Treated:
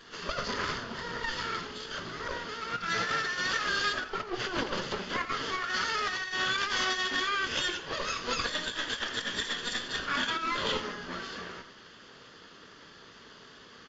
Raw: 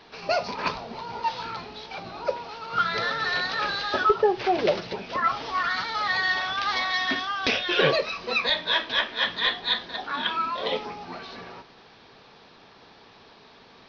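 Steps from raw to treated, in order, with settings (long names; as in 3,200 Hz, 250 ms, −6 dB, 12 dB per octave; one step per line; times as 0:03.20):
lower of the sound and its delayed copy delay 0.63 ms
low-shelf EQ 200 Hz −7 dB
compressor whose output falls as the input rises −30 dBFS, ratio −0.5
on a send: single-tap delay 83 ms −13 dB
on the sum: level −1.5 dB
AAC 24 kbit/s 16,000 Hz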